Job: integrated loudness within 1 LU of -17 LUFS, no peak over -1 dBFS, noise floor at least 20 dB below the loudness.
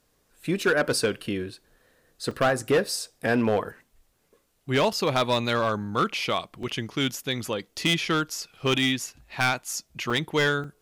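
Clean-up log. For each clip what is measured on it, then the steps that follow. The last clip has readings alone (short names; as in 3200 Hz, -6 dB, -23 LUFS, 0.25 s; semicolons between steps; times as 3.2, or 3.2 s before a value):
clipped 0.8%; flat tops at -16.0 dBFS; dropouts 5; longest dropout 3.9 ms; loudness -26.0 LUFS; peak -16.0 dBFS; loudness target -17.0 LUFS
-> clip repair -16 dBFS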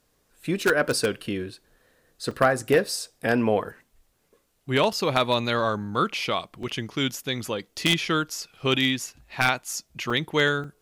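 clipped 0.0%; dropouts 5; longest dropout 3.9 ms
-> interpolate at 2.31/4.93/6.63/10.1/10.64, 3.9 ms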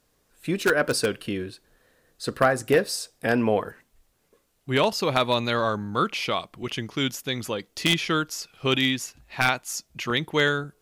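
dropouts 0; loudness -25.0 LUFS; peak -7.0 dBFS; loudness target -17.0 LUFS
-> gain +8 dB; limiter -1 dBFS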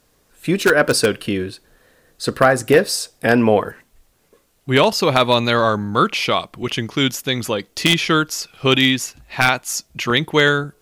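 loudness -17.5 LUFS; peak -1.0 dBFS; noise floor -61 dBFS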